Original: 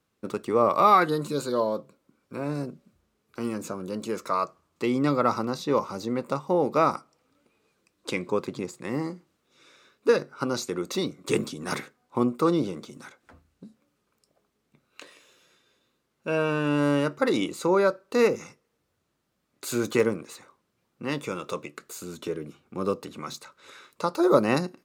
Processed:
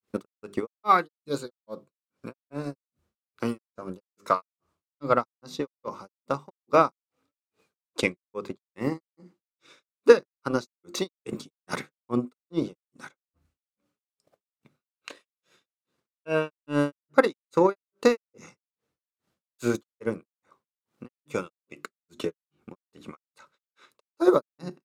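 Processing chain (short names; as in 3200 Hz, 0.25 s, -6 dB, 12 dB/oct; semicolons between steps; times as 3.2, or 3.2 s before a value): notches 50/100/150/200/250/300/350/400 Hz; transient shaper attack +7 dB, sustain -5 dB; grains 0.258 s, grains 2.4/s, pitch spread up and down by 0 st; gain +1 dB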